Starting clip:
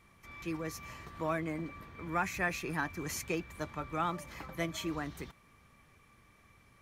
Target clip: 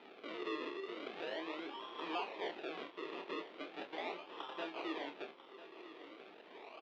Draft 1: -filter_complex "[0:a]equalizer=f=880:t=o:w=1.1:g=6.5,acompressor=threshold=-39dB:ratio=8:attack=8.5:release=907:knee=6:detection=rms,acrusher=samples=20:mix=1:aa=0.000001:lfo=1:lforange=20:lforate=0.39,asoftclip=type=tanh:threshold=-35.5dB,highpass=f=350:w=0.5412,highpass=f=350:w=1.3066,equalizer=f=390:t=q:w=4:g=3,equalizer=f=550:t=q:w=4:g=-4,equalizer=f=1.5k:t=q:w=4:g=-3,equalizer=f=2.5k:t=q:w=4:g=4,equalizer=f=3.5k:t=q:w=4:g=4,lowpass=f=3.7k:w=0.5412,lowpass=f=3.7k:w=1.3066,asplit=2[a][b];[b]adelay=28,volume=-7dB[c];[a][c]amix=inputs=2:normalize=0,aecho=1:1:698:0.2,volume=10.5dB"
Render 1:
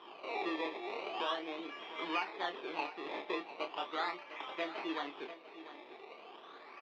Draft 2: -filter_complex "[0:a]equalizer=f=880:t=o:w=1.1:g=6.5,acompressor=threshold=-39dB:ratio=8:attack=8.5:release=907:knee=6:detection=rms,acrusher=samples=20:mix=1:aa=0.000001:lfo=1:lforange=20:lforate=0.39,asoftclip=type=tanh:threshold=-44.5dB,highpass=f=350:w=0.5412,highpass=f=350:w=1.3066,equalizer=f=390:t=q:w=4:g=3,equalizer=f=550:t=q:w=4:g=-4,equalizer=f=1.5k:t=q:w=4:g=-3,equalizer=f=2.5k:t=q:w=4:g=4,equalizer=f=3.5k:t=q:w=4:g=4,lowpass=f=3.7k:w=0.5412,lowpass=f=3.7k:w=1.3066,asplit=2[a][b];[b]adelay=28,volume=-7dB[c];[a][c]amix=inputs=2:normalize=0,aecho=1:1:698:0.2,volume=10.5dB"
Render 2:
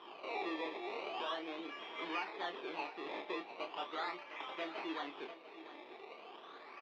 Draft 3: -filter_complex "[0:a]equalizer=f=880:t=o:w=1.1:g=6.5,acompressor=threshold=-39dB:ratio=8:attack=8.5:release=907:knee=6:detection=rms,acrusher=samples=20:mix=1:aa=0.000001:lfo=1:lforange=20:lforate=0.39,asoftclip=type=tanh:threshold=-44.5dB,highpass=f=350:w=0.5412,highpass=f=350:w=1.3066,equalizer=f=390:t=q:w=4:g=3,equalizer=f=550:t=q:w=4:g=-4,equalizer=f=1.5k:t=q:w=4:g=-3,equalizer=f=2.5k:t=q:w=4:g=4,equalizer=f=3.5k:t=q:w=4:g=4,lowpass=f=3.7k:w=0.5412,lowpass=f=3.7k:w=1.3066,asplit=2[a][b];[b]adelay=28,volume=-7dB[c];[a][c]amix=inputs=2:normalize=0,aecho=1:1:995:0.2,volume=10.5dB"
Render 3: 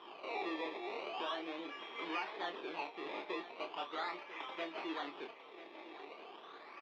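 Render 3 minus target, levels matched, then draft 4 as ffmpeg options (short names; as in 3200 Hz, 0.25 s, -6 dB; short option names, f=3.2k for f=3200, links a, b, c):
decimation with a swept rate: distortion -8 dB
-filter_complex "[0:a]equalizer=f=880:t=o:w=1.1:g=6.5,acompressor=threshold=-39dB:ratio=8:attack=8.5:release=907:knee=6:detection=rms,acrusher=samples=39:mix=1:aa=0.000001:lfo=1:lforange=39:lforate=0.39,asoftclip=type=tanh:threshold=-44.5dB,highpass=f=350:w=0.5412,highpass=f=350:w=1.3066,equalizer=f=390:t=q:w=4:g=3,equalizer=f=550:t=q:w=4:g=-4,equalizer=f=1.5k:t=q:w=4:g=-3,equalizer=f=2.5k:t=q:w=4:g=4,equalizer=f=3.5k:t=q:w=4:g=4,lowpass=f=3.7k:w=0.5412,lowpass=f=3.7k:w=1.3066,asplit=2[a][b];[b]adelay=28,volume=-7dB[c];[a][c]amix=inputs=2:normalize=0,aecho=1:1:995:0.2,volume=10.5dB"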